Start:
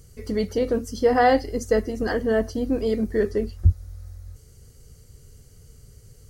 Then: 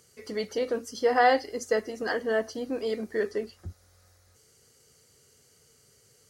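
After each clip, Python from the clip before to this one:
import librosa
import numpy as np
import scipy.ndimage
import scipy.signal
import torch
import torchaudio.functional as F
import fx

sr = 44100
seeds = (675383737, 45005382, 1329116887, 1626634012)

y = fx.weighting(x, sr, curve='A')
y = F.gain(torch.from_numpy(y), -1.5).numpy()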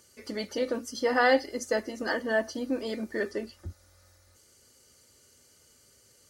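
y = x + 0.55 * np.pad(x, (int(3.4 * sr / 1000.0), 0))[:len(x)]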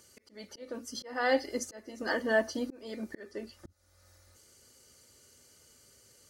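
y = fx.auto_swell(x, sr, attack_ms=497.0)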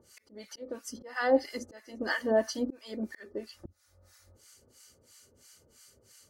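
y = fx.harmonic_tremolo(x, sr, hz=3.0, depth_pct=100, crossover_hz=910.0)
y = F.gain(torch.from_numpy(y), 5.0).numpy()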